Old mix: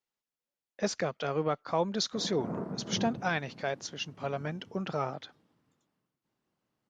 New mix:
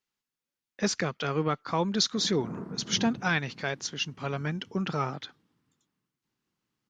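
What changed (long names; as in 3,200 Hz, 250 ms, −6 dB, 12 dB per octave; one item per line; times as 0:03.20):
speech +6.0 dB
master: add parametric band 620 Hz −10 dB 0.89 octaves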